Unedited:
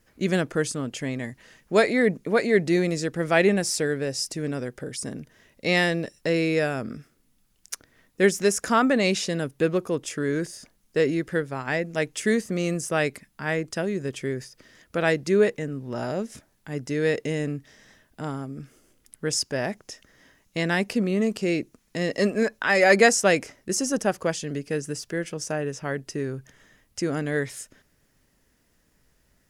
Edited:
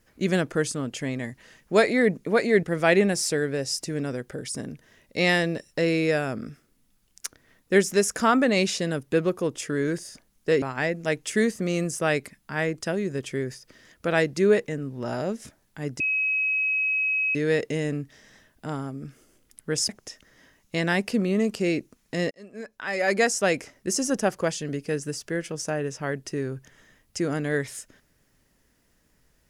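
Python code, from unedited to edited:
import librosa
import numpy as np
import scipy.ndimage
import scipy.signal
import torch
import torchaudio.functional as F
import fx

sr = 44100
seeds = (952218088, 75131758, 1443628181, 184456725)

y = fx.edit(x, sr, fx.cut(start_s=2.63, length_s=0.48),
    fx.cut(start_s=11.1, length_s=0.42),
    fx.insert_tone(at_s=16.9, length_s=1.35, hz=2550.0, db=-21.5),
    fx.cut(start_s=19.44, length_s=0.27),
    fx.fade_in_span(start_s=22.13, length_s=1.64), tone=tone)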